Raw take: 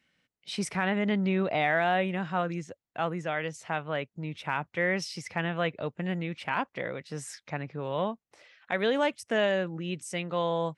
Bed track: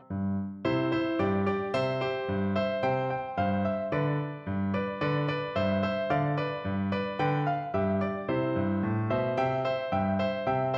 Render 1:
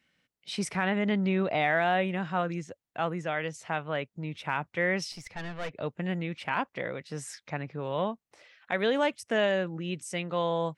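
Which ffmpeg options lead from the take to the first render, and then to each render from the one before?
-filter_complex "[0:a]asettb=1/sr,asplit=3[a][b][c];[a]atrim=end=5.124[d];[b]atrim=start=5.12:end=5.75,asetpts=PTS-STARTPTS,afade=t=in:d=0.004:c=qsin,afade=t=out:st=0.626:d=0.004:c=qsin,aeval=exprs='(tanh(31.6*val(0)+0.75)-tanh(0.75))/31.6':c=same[e];[c]atrim=start=5.746[f];[d][e]acrossfade=d=0.004:c1=hsin:c2=qsin[g];[g][f]acrossfade=d=0.004:c1=qsin:c2=hsin"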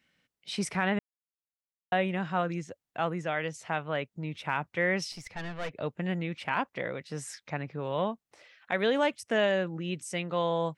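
-filter_complex "[0:a]asplit=3[a][b][c];[a]atrim=end=0.99,asetpts=PTS-STARTPTS,afade=t=out:st=0.986:d=0.004:c=hsin[d];[b]atrim=start=0.99:end=1.92,asetpts=PTS-STARTPTS,volume=0[e];[c]atrim=start=1.92,asetpts=PTS-STARTPTS,afade=t=in:d=0.004:c=hsin[f];[d][e][f]concat=n=3:v=0:a=1"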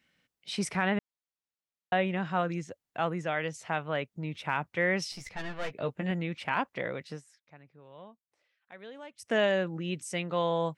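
-filter_complex "[0:a]asettb=1/sr,asplit=3[a][b][c];[a]atrim=end=0.824[d];[b]atrim=start=0.82:end=2.26,asetpts=PTS-STARTPTS,afade=t=in:d=0.004:c=qsin,afade=t=out:st=1.436:d=0.004:c=qsin,lowpass=6.5k[e];[c]atrim=start=2.256[f];[d][e]acrossfade=d=0.004:c1=hsin:c2=qsin[g];[g][f]acrossfade=d=0.004:c1=qsin:c2=hsin,asettb=1/sr,asplit=3[h][i][j];[h]atrim=end=5.084[k];[i]atrim=start=5.08:end=6.11,asetpts=PTS-STARTPTS,afade=t=in:d=0.004:c=qsin,afade=t=out:st=1.026:d=0.004:c=qsin,asplit=2[l][m];[m]adelay=15,volume=-7dB[n];[l][n]amix=inputs=2:normalize=0,atrim=end_sample=45423[o];[j]atrim=start=6.106[p];[k][o]acrossfade=d=0.004:c1=hsin:c2=qsin[q];[q][p]acrossfade=d=0.004:c1=qsin:c2=hsin,asplit=3[r][s][t];[r]atrim=end=7.22,asetpts=PTS-STARTPTS,afade=t=out:st=7.1:d=0.12:silence=0.105925[u];[s]atrim=start=7.22:end=9.14,asetpts=PTS-STARTPTS,volume=-19.5dB[v];[t]atrim=start=9.14,asetpts=PTS-STARTPTS,afade=t=in:d=0.12:silence=0.105925[w];[u][v][w]concat=n=3:v=0:a=1"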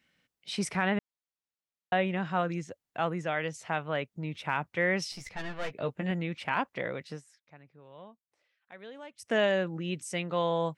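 -af anull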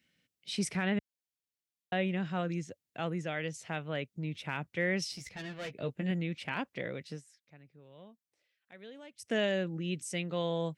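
-af "highpass=60,equalizer=f=1k:w=0.88:g=-10.5"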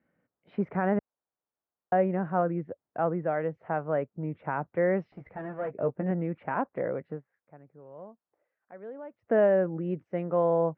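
-af "lowpass=f=1.5k:w=0.5412,lowpass=f=1.5k:w=1.3066,equalizer=f=710:w=0.51:g=11"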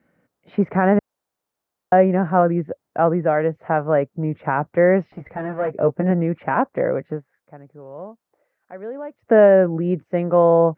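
-af "volume=10.5dB"

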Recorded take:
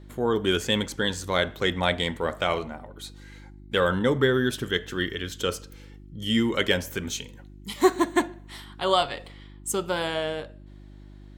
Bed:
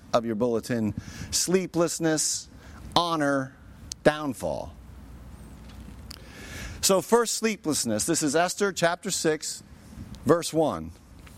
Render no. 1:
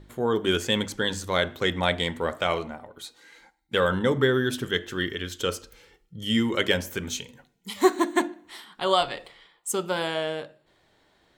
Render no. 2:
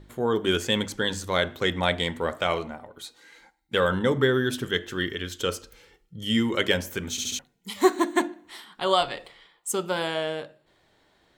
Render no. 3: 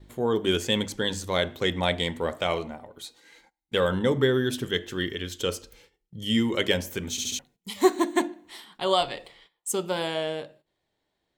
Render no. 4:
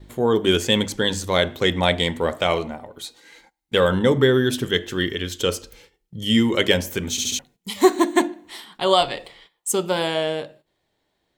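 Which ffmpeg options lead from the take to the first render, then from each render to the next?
-af "bandreject=f=50:t=h:w=4,bandreject=f=100:t=h:w=4,bandreject=f=150:t=h:w=4,bandreject=f=200:t=h:w=4,bandreject=f=250:t=h:w=4,bandreject=f=300:t=h:w=4,bandreject=f=350:t=h:w=4"
-filter_complex "[0:a]asplit=5[a][b][c][d][e];[a]atrim=end=7.182[f];[b]atrim=start=7.108:end=7.182[g];[c]atrim=start=7.108:end=7.182[h];[d]atrim=start=7.108:end=7.182[i];[e]atrim=start=7.388[j];[f][g]acrossfade=d=0.004:c1=hsin:c2=hsin[k];[k][h]acrossfade=d=0.004:c1=hsin:c2=hsin[l];[l][i]acrossfade=d=0.004:c1=hsin:c2=hsin[m];[m][j]acrossfade=d=0.004:c1=hsin:c2=hsin"
-af "agate=range=-14dB:threshold=-53dB:ratio=16:detection=peak,equalizer=f=1.4k:t=o:w=0.76:g=-5.5"
-af "volume=6dB,alimiter=limit=-3dB:level=0:latency=1"

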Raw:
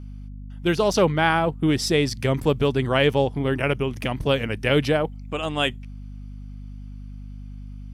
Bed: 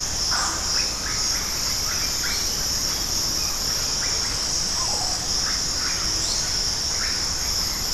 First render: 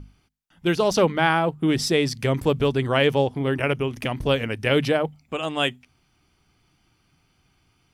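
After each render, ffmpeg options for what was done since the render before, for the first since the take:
-af "bandreject=f=50:t=h:w=6,bandreject=f=100:t=h:w=6,bandreject=f=150:t=h:w=6,bandreject=f=200:t=h:w=6,bandreject=f=250:t=h:w=6"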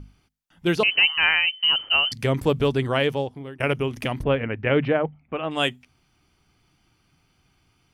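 -filter_complex "[0:a]asettb=1/sr,asplit=3[a][b][c];[a]atrim=end=0.834[d];[b]atrim=start=0.83:end=2.12,asetpts=PTS-STARTPTS,afade=t=in:d=0.004:c=qsin,afade=t=out:st=1.286:d=0.004:c=qsin,lowpass=f=2.7k:t=q:w=0.5098,lowpass=f=2.7k:t=q:w=0.6013,lowpass=f=2.7k:t=q:w=0.9,lowpass=f=2.7k:t=q:w=2.563,afreqshift=-3200[e];[c]atrim=start=2.116[f];[d][e]acrossfade=d=0.004:c1=hsin:c2=qsin[g];[g][f]acrossfade=d=0.004:c1=qsin:c2=hsin,asplit=3[h][i][j];[h]afade=t=out:st=4.22:d=0.02[k];[i]lowpass=f=2.5k:w=0.5412,lowpass=f=2.5k:w=1.3066,afade=t=in:st=4.22:d=0.02,afade=t=out:st=5.5:d=0.02[l];[j]afade=t=in:st=5.5:d=0.02[m];[k][l][m]amix=inputs=3:normalize=0,asplit=2[n][o];[n]atrim=end=3.6,asetpts=PTS-STARTPTS,afade=t=out:st=2.79:d=0.81:silence=0.0749894[p];[o]atrim=start=3.6,asetpts=PTS-STARTPTS,afade=t=in:d=0.004:c=hsin:silence=0.0749894[q];[p][q]concat=n=2:v=0:a=1"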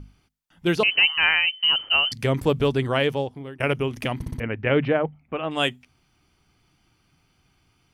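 -filter_complex "[0:a]asplit=5[a][b][c][d][e];[a]atrim=end=4.222[f];[b]atrim=start=4.158:end=4.222[g];[c]atrim=start=4.158:end=4.222[h];[d]atrim=start=4.158:end=4.222[i];[e]atrim=start=4.398[j];[f][g]acrossfade=d=0.004:c1=hsin:c2=hsin[k];[k][h]acrossfade=d=0.004:c1=hsin:c2=hsin[l];[l][i]acrossfade=d=0.004:c1=hsin:c2=hsin[m];[m][j]acrossfade=d=0.004:c1=hsin:c2=hsin"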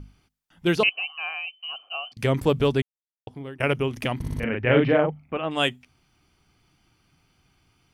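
-filter_complex "[0:a]asettb=1/sr,asplit=3[a][b][c];[a]atrim=end=0.894[d];[b]atrim=start=0.89:end=2.17,asetpts=PTS-STARTPTS,afade=t=in:d=0.004:c=qsin,afade=t=out:st=1.276:d=0.004:c=qsin,asplit=3[e][f][g];[e]bandpass=f=730:t=q:w=8,volume=0dB[h];[f]bandpass=f=1.09k:t=q:w=8,volume=-6dB[i];[g]bandpass=f=2.44k:t=q:w=8,volume=-9dB[j];[h][i][j]amix=inputs=3:normalize=0[k];[c]atrim=start=2.166[l];[d][k]acrossfade=d=0.004:c1=hsin:c2=qsin[m];[m][l]acrossfade=d=0.004:c1=qsin:c2=hsin,asettb=1/sr,asplit=3[n][o][p];[n]atrim=end=4.204[q];[o]atrim=start=4.2:end=5.37,asetpts=PTS-STARTPTS,afade=t=in:d=0.004:c=qsin,afade=t=out:st=1.166:d=0.004:c=qsin,asplit=2[r][s];[s]adelay=40,volume=-2.5dB[t];[r][t]amix=inputs=2:normalize=0,atrim=end_sample=51597[u];[p]atrim=start=5.366[v];[q][u]acrossfade=d=0.004:c1=hsin:c2=qsin[w];[w][v]acrossfade=d=0.004:c1=qsin:c2=hsin,asplit=3[x][y][z];[x]atrim=end=2.82,asetpts=PTS-STARTPTS,afade=t=out:st=2.816:d=0.004:c=hsin[aa];[y]atrim=start=2.82:end=3.27,asetpts=PTS-STARTPTS,volume=0[ab];[z]atrim=start=3.27,asetpts=PTS-STARTPTS,afade=t=in:d=0.004:c=hsin[ac];[aa][ab][ac]concat=n=3:v=0:a=1"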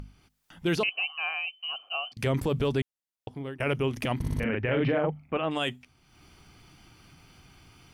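-af "alimiter=limit=-18.5dB:level=0:latency=1:release=14,acompressor=mode=upward:threshold=-44dB:ratio=2.5"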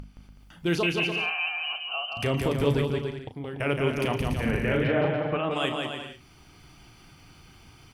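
-filter_complex "[0:a]asplit=2[a][b];[b]adelay=35,volume=-10dB[c];[a][c]amix=inputs=2:normalize=0,aecho=1:1:170|289|372.3|430.6|471.4:0.631|0.398|0.251|0.158|0.1"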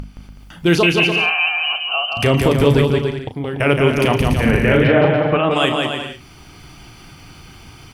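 -af "volume=11.5dB,alimiter=limit=-3dB:level=0:latency=1"

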